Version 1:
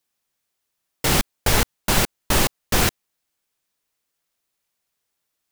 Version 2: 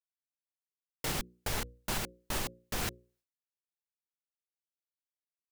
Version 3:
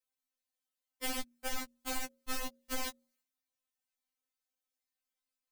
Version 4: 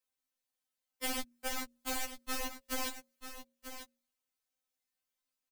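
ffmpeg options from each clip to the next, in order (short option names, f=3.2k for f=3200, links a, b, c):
-af "bandreject=f=60:t=h:w=6,bandreject=f=120:t=h:w=6,bandreject=f=180:t=h:w=6,bandreject=f=240:t=h:w=6,bandreject=f=300:t=h:w=6,bandreject=f=360:t=h:w=6,bandreject=f=420:t=h:w=6,bandreject=f=480:t=h:w=6,bandreject=f=540:t=h:w=6,agate=range=-33dB:threshold=-56dB:ratio=3:detection=peak,alimiter=limit=-14dB:level=0:latency=1:release=483,volume=-8.5dB"
-af "acompressor=threshold=-37dB:ratio=6,afftfilt=real='re*3.46*eq(mod(b,12),0)':imag='im*3.46*eq(mod(b,12),0)':win_size=2048:overlap=0.75,volume=6dB"
-filter_complex "[0:a]acrossover=split=120|960|5400[a][b][c][d];[a]asoftclip=type=tanh:threshold=-37dB[e];[e][b][c][d]amix=inputs=4:normalize=0,aecho=1:1:940:0.299,volume=1dB"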